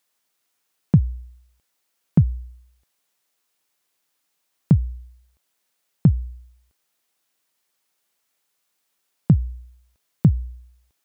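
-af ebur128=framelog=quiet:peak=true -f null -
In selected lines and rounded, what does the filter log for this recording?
Integrated loudness:
  I:         -21.6 LUFS
  Threshold: -34.6 LUFS
Loudness range:
  LRA:         3.0 LU
  Threshold: -47.9 LUFS
  LRA low:   -29.5 LUFS
  LRA high:  -26.5 LUFS
True peak:
  Peak:       -4.5 dBFS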